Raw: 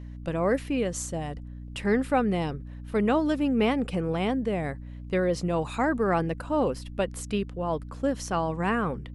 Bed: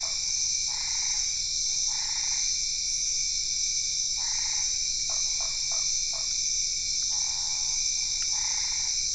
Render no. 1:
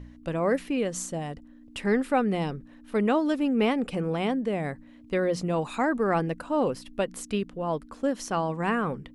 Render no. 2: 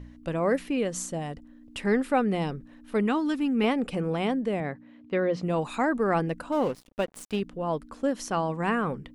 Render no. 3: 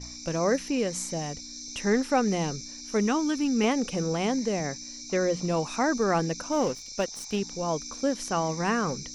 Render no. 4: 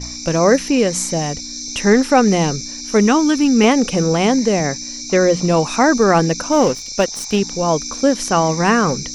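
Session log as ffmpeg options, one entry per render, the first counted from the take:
-af "bandreject=f=60:t=h:w=4,bandreject=f=120:t=h:w=4,bandreject=f=180:t=h:w=4"
-filter_complex "[0:a]asettb=1/sr,asplit=3[a][b][c];[a]atrim=end=3.014[d];[b]atrim=start=3.01:end=3.64,asetpts=PTS-STARTPTS,afade=t=in:d=0.004:c=qsin,afade=t=out:st=0.626:d=0.004:c=qsin,equalizer=f=580:w=3.1:g=-13[e];[c]atrim=start=3.636[f];[d][e]acrossfade=d=0.004:c1=hsin:c2=qsin[g];[g][f]acrossfade=d=0.004:c1=qsin:c2=hsin,asettb=1/sr,asplit=3[h][i][j];[h]atrim=end=4.604[k];[i]atrim=start=4.6:end=5.43,asetpts=PTS-STARTPTS,afade=t=in:d=0.004:c=qsin,afade=t=out:st=0.826:d=0.004:c=qsin,highpass=120,lowpass=3.5k[l];[j]atrim=start=5.426[m];[k][l]acrossfade=d=0.004:c1=hsin:c2=qsin[n];[n][m]acrossfade=d=0.004:c1=qsin:c2=hsin,asettb=1/sr,asplit=3[o][p][q];[o]atrim=end=6.524[r];[p]atrim=start=6.52:end=7.4,asetpts=PTS-STARTPTS,afade=t=in:d=0.004:c=qsin,afade=t=out:st=0.876:d=0.004:c=qsin,aeval=exprs='sgn(val(0))*max(abs(val(0))-0.00841,0)':c=same[s];[q]atrim=start=7.396[t];[r][s]acrossfade=d=0.004:c1=hsin:c2=qsin[u];[u][t]acrossfade=d=0.004:c1=qsin:c2=hsin"
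-filter_complex "[1:a]volume=-13dB[a];[0:a][a]amix=inputs=2:normalize=0"
-af "volume=12dB,alimiter=limit=-2dB:level=0:latency=1"

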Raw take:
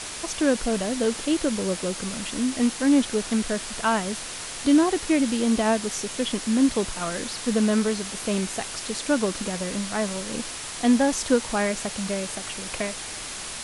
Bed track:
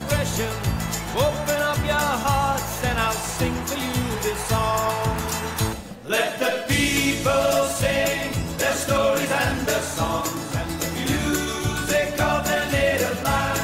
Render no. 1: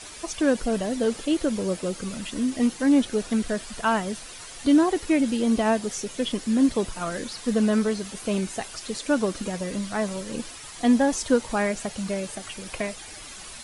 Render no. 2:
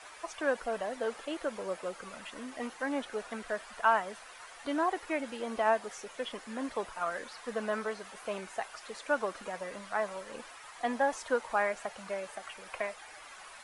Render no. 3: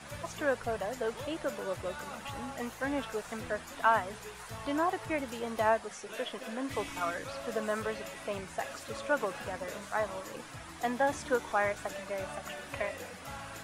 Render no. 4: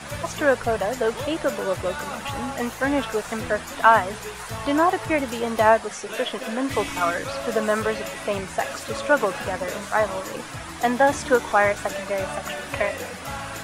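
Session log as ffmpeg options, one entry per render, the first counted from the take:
-af "afftdn=nr=10:nf=-35"
-filter_complex "[0:a]acrossover=split=580 2100:gain=0.0794 1 0.178[a][b][c];[a][b][c]amix=inputs=3:normalize=0"
-filter_complex "[1:a]volume=-22.5dB[a];[0:a][a]amix=inputs=2:normalize=0"
-af "volume=11dB"

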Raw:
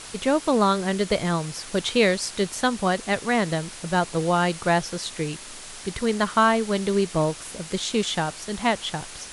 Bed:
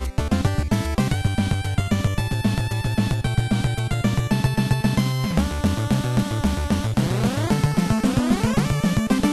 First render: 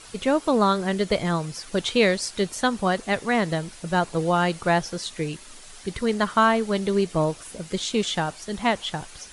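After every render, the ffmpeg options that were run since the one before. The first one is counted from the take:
-af "afftdn=nr=8:nf=-40"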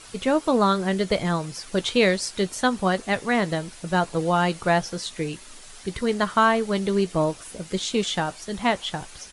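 -filter_complex "[0:a]asplit=2[a][b];[b]adelay=16,volume=-14dB[c];[a][c]amix=inputs=2:normalize=0"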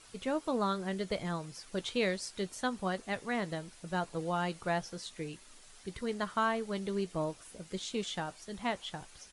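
-af "volume=-12dB"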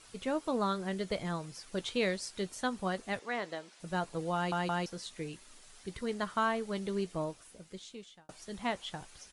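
-filter_complex "[0:a]asettb=1/sr,asplit=3[a][b][c];[a]atrim=end=3.194[d];[b]atrim=start=3.19:end=3.8,asetpts=PTS-STARTPTS,afade=t=in:d=0.004:c=qsin,afade=t=out:st=0.606:d=0.004:c=qsin,highpass=360,lowpass=6.7k[e];[c]atrim=start=3.796[f];[d][e]acrossfade=d=0.004:c1=hsin:c2=qsin[g];[g][f]acrossfade=d=0.004:c1=qsin:c2=hsin,asplit=5[h][i][j][k][l];[h]atrim=end=4.522[m];[i]atrim=start=4.348:end=4.522[n];[j]atrim=start=4.348:end=4.522[o];[k]atrim=start=4.858:end=8.29,asetpts=PTS-STARTPTS,afade=t=out:st=2.172:d=1.26[p];[l]atrim=start=8.29,asetpts=PTS-STARTPTS,afade=t=in:d=0.004:c=hsin[q];[m][n]acrossfade=d=0.004:c1=hsin:c2=hsin[r];[r][o]acrossfade=d=0.004:c1=hsin:c2=hsin[s];[p][q]concat=n=2:v=0:a=1[t];[s][t]acrossfade=d=0.004:c1=hsin:c2=hsin"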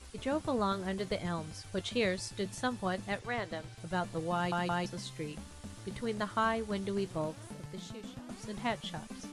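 -filter_complex "[1:a]volume=-26.5dB[a];[0:a][a]amix=inputs=2:normalize=0"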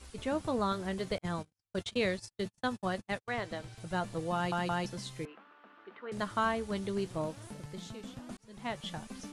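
-filter_complex "[0:a]asettb=1/sr,asplit=3[a][b][c];[a]atrim=end=1.184[d];[b]atrim=start=1.18:end=3.28,asetpts=PTS-STARTPTS,afade=t=in:d=0.004:c=qsin,afade=t=out:st=2.096:d=0.004:c=qsin,agate=range=-50dB:threshold=-40dB:ratio=16:release=100:detection=peak[e];[c]atrim=start=3.276[f];[d][e]acrossfade=d=0.004:c1=hsin:c2=qsin[g];[g][f]acrossfade=d=0.004:c1=qsin:c2=hsin,asettb=1/sr,asplit=3[h][i][j];[h]atrim=end=5.254[k];[i]atrim=start=5.25:end=6.12,asetpts=PTS-STARTPTS,afade=t=in:d=0.004:c=qsin,afade=t=out:st=0.866:d=0.004:c=qsin,highpass=f=360:w=0.5412,highpass=f=360:w=1.3066,equalizer=f=390:t=q:w=4:g=-5,equalizer=f=550:t=q:w=4:g=-8,equalizer=f=820:t=q:w=4:g=-3,equalizer=f=1.3k:t=q:w=4:g=6,equalizer=f=2.1k:t=q:w=4:g=-5,lowpass=f=2.4k:w=0.5412,lowpass=f=2.4k:w=1.3066[l];[j]atrim=start=6.116[m];[k][l]acrossfade=d=0.004:c1=hsin:c2=qsin[n];[n][m]acrossfade=d=0.004:c1=qsin:c2=hsin,asplit=2[o][p];[o]atrim=end=8.37,asetpts=PTS-STARTPTS,afade=t=out:st=8.366:d=0.004:c=hsin[q];[p]atrim=start=8.37,asetpts=PTS-STARTPTS,afade=t=in:d=0.49[r];[q][r]concat=n=2:v=0:a=1"

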